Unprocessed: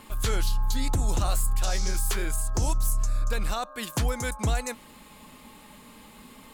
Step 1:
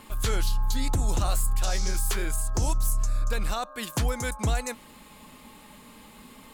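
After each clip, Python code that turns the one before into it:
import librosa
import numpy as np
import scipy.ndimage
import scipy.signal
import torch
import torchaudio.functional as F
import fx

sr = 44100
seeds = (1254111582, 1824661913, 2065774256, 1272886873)

y = x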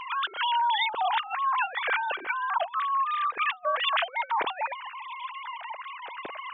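y = fx.sine_speech(x, sr)
y = fx.over_compress(y, sr, threshold_db=-29.0, ratio=-0.5)
y = F.gain(torch.from_numpy(y), 1.0).numpy()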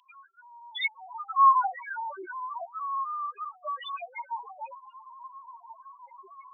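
y = fx.spec_topn(x, sr, count=1)
y = fx.filter_sweep_highpass(y, sr, from_hz=3100.0, to_hz=76.0, start_s=0.63, end_s=3.43, q=5.7)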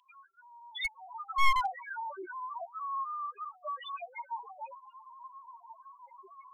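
y = np.minimum(x, 2.0 * 10.0 ** (-22.0 / 20.0) - x)
y = fx.low_shelf(y, sr, hz=480.0, db=6.0)
y = F.gain(torch.from_numpy(y), -5.0).numpy()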